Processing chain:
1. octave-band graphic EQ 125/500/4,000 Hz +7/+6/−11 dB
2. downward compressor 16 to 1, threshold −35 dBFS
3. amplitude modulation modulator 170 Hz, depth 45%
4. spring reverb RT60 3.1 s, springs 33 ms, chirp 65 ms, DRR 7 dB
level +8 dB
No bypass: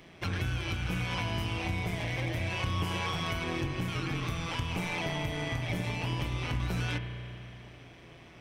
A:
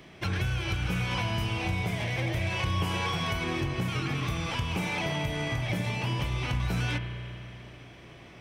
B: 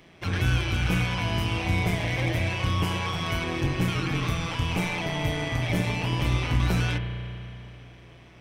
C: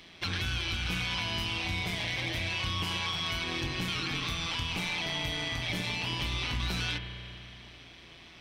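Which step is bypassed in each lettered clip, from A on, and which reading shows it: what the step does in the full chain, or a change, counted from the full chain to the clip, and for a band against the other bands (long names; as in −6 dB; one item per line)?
3, change in crest factor −2.0 dB
2, average gain reduction 5.0 dB
1, 4 kHz band +9.5 dB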